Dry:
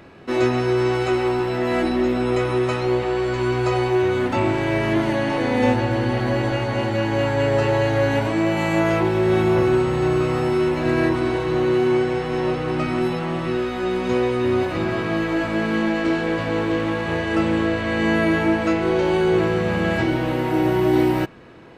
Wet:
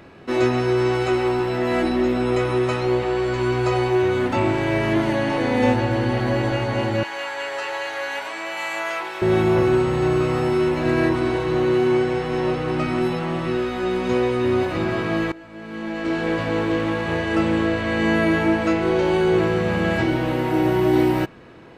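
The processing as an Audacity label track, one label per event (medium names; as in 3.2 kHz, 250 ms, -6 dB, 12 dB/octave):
7.030000	9.220000	high-pass 1 kHz
15.320000	16.270000	fade in quadratic, from -20 dB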